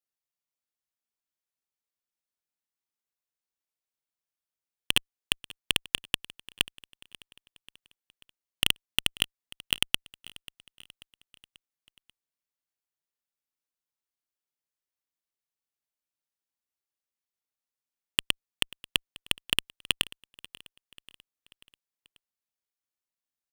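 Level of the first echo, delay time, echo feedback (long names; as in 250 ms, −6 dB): −21.0 dB, 538 ms, 53%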